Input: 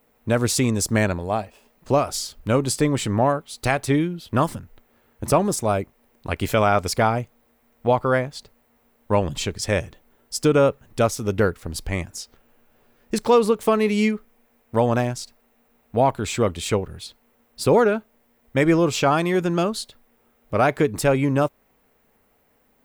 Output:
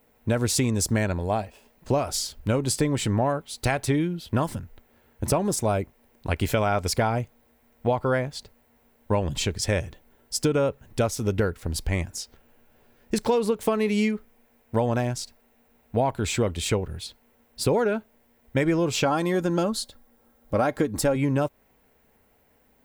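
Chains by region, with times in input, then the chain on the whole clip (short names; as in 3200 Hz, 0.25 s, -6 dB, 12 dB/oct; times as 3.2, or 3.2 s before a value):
19.05–21.16 bell 2500 Hz -7 dB 0.75 oct + comb 3.7 ms, depth 42%
whole clip: bell 67 Hz +5 dB 1.2 oct; notch 1200 Hz, Q 9.4; compressor 5:1, threshold -19 dBFS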